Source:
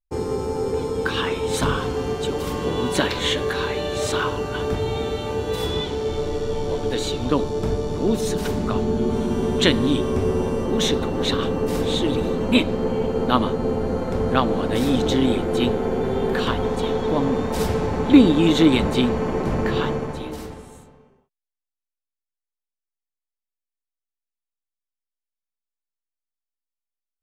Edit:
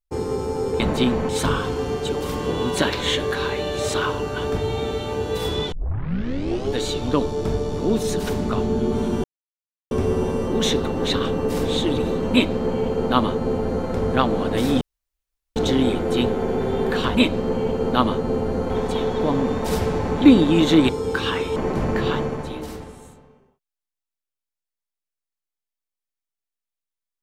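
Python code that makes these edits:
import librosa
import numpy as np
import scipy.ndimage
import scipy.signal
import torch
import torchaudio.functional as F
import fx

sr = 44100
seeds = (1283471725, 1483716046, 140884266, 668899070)

y = fx.edit(x, sr, fx.swap(start_s=0.8, length_s=0.67, other_s=18.77, other_length_s=0.49),
    fx.tape_start(start_s=5.9, length_s=1.03),
    fx.silence(start_s=9.42, length_s=0.67),
    fx.duplicate(start_s=12.5, length_s=1.55, to_s=16.58),
    fx.insert_room_tone(at_s=14.99, length_s=0.75), tone=tone)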